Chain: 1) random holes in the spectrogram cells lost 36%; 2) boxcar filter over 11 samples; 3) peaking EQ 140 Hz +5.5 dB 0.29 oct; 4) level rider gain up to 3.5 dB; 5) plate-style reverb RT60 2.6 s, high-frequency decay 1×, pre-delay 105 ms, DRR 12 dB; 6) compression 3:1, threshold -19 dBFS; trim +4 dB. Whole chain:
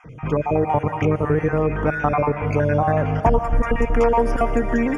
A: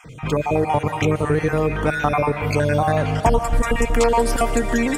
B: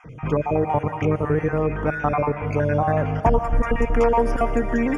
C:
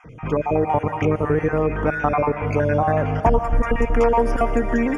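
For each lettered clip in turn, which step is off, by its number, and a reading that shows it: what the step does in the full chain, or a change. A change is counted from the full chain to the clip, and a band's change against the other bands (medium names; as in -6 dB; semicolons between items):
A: 2, 2 kHz band +3.0 dB; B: 4, momentary loudness spread change +1 LU; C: 3, 125 Hz band -2.0 dB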